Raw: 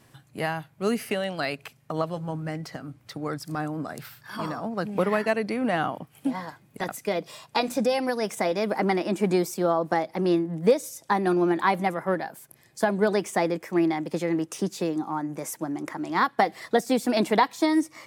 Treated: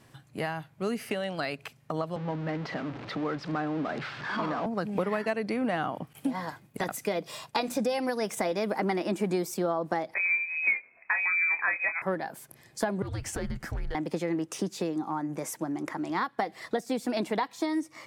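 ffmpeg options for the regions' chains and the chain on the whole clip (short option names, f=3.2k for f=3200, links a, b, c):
-filter_complex "[0:a]asettb=1/sr,asplit=3[a][b][c];[a]atrim=end=2.164[d];[b]atrim=start=2.16:end=4.66,asetpts=PTS-STARTPTS,afade=t=in:d=0.004:c=qsin,afade=t=out:st=2.496:d=0.004:c=qsin,aeval=exprs='val(0)+0.5*0.0224*sgn(val(0))':c=same,acrossover=split=160 5400:gain=0.2 1 0.126[e][f][g];[e][f][g]amix=inputs=3:normalize=0,adynamicsmooth=sensitivity=3:basefreq=4.3k[h];[c]atrim=start=4.656[i];[d][h]acrossfade=d=0.004:c1=hsin:c2=qsin[j];[j][i]acrossfade=d=0.004:c1=qsin:c2=hsin,asettb=1/sr,asplit=3[k][l][m];[k]atrim=end=6.134[n];[l]atrim=start=6.13:end=9.57,asetpts=PTS-STARTPTS,afade=t=in:d=0.004:c=qsin,afade=t=out:st=3.436:d=0.004:c=qsin,agate=range=-33dB:threshold=-55dB:ratio=3:release=100:detection=peak,highshelf=f=11k:g=7[o];[m]atrim=start=9.566[p];[n][o]acrossfade=d=0.004:c1=hsin:c2=qsin[q];[q][p]acrossfade=d=0.004:c1=qsin:c2=hsin,asettb=1/sr,asplit=3[r][s][t];[r]atrim=end=10.144[u];[s]atrim=start=10.14:end=12.02,asetpts=PTS-STARTPTS,afade=t=in:d=0.004:c=qsin,afade=t=out:st=1.876:d=0.004:c=qsin,asplit=2[v][w];[w]adelay=26,volume=-8.5dB[x];[v][x]amix=inputs=2:normalize=0,atrim=end_sample=82908,lowpass=f=2.3k:t=q:w=0.5098,lowpass=f=2.3k:t=q:w=0.6013,lowpass=f=2.3k:t=q:w=0.9,lowpass=f=2.3k:t=q:w=2.563,afreqshift=-2700[y];[t]atrim=start=12.016[z];[u][y]acrossfade=d=0.004:c1=hsin:c2=qsin[aa];[aa][z]acrossfade=d=0.004:c1=qsin:c2=hsin,asettb=1/sr,asplit=3[ab][ac][ad];[ab]atrim=end=13.024[ae];[ac]atrim=start=13.02:end=13.95,asetpts=PTS-STARTPTS,afade=t=in:d=0.004:c=qsin,afade=t=out:st=0.926:d=0.004:c=qsin,acompressor=threshold=-31dB:ratio=4:attack=3.2:release=140:knee=1:detection=peak,afreqshift=-300,asoftclip=type=hard:threshold=-28.5dB[af];[ad]atrim=start=13.946[ag];[ae][af]acrossfade=d=0.004:c1=hsin:c2=qsin[ah];[ah][ag]acrossfade=d=0.004:c1=qsin:c2=hsin,dynaudnorm=f=220:g=31:m=4dB,highshelf=f=9.7k:g=-6.5,acompressor=threshold=-29dB:ratio=2.5"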